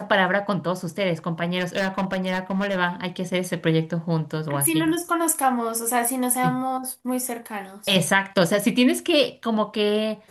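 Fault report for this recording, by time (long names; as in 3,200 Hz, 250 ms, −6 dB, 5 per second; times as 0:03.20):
0:01.58–0:02.79: clipping −19.5 dBFS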